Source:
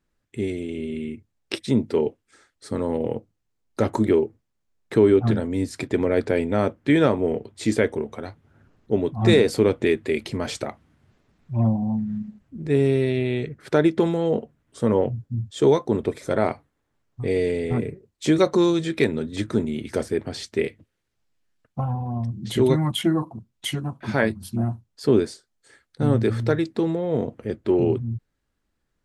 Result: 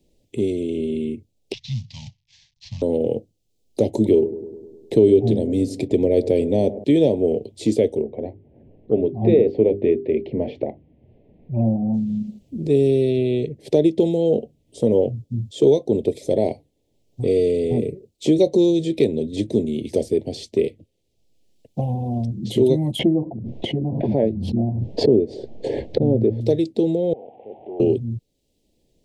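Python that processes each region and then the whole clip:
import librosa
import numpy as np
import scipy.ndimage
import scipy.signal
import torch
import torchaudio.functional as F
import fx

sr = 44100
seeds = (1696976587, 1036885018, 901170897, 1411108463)

y = fx.chain(x, sr, fx.cvsd(bps=32000),
    fx.cheby1_bandstop(low_hz=130.0, high_hz=1200.0, order=3), at=(1.53, 2.82))
y = fx.chain(y, sr, fx.low_shelf(hz=130.0, db=4.5),
    fx.echo_bbd(ms=102, stages=1024, feedback_pct=55, wet_db=-15.0), at=(3.88, 6.84))
y = fx.chain(y, sr, fx.lowpass(hz=2100.0, slope=24),
    fx.hum_notches(base_hz=50, count=8), at=(8.02, 11.94))
y = fx.chain(y, sr, fx.lowpass(hz=1200.0, slope=12),
    fx.pre_swell(db_per_s=28.0), at=(22.99, 26.41))
y = fx.chain(y, sr, fx.delta_mod(bps=16000, step_db=-35.5),
    fx.bandpass_q(hz=780.0, q=9.2),
    fx.env_flatten(amount_pct=50), at=(27.13, 27.8))
y = scipy.signal.sosfilt(scipy.signal.cheby1(2, 1.0, [530.0, 3300.0], 'bandstop', fs=sr, output='sos'), y)
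y = fx.peak_eq(y, sr, hz=640.0, db=5.5, octaves=2.3)
y = fx.band_squash(y, sr, depth_pct=40)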